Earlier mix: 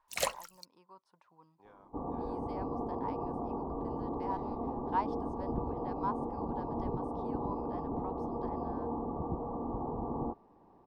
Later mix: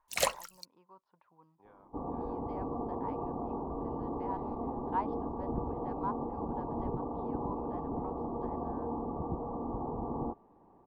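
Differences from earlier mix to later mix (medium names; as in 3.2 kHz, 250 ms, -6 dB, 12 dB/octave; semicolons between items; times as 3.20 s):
speech: add distance through air 330 m; first sound +3.0 dB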